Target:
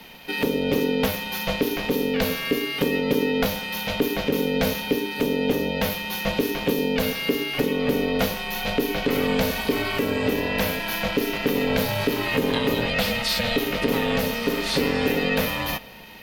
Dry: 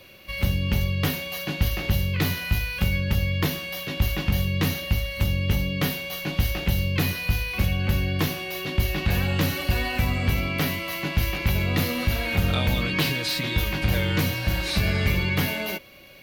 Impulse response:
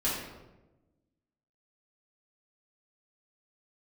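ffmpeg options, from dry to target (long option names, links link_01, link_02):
-filter_complex "[0:a]asplit=2[link_01][link_02];[1:a]atrim=start_sample=2205[link_03];[link_02][link_03]afir=irnorm=-1:irlink=0,volume=-26dB[link_04];[link_01][link_04]amix=inputs=2:normalize=0,aeval=exprs='val(0)*sin(2*PI*350*n/s)':channel_layout=same,alimiter=limit=-17dB:level=0:latency=1:release=454,volume=7dB"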